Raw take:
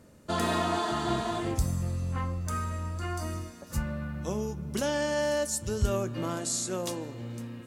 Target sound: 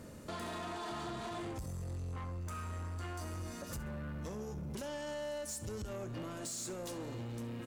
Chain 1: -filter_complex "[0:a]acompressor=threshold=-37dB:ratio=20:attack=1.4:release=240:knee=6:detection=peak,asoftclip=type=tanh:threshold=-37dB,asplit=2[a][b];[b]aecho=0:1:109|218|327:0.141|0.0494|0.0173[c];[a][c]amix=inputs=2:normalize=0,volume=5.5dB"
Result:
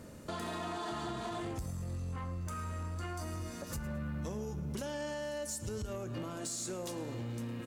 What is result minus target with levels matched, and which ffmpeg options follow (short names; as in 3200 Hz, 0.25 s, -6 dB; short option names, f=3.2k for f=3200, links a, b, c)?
echo 43 ms late; soft clip: distortion -7 dB
-filter_complex "[0:a]acompressor=threshold=-37dB:ratio=20:attack=1.4:release=240:knee=6:detection=peak,asoftclip=type=tanh:threshold=-43dB,asplit=2[a][b];[b]aecho=0:1:66|132|198:0.141|0.0494|0.0173[c];[a][c]amix=inputs=2:normalize=0,volume=5.5dB"